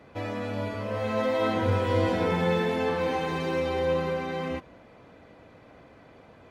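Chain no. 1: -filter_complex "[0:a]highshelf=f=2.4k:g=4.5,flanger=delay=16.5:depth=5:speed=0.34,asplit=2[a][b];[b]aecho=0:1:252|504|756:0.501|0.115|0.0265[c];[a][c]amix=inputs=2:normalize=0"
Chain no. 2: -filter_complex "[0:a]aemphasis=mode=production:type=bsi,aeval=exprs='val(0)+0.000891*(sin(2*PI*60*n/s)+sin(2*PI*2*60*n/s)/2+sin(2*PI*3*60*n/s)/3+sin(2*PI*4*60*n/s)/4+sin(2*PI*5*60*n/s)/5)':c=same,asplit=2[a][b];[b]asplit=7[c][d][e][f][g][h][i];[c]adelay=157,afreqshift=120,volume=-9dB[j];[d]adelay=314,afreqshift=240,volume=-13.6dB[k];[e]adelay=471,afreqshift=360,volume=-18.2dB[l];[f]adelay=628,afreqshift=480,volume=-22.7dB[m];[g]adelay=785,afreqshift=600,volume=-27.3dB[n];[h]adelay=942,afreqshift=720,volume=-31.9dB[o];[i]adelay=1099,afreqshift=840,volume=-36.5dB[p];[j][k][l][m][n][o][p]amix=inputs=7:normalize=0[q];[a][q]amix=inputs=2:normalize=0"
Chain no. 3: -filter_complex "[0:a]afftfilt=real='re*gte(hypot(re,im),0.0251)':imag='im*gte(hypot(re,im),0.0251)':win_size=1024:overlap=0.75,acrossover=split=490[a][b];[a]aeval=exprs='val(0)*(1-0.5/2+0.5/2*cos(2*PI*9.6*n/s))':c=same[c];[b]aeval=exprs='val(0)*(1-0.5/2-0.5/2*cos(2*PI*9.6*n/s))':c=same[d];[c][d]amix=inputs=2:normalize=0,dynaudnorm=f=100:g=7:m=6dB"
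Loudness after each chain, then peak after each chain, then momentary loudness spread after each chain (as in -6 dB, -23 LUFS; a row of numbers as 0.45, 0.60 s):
-28.5, -28.5, -24.0 LUFS; -13.5, -13.0, -9.5 dBFS; 11, 9, 9 LU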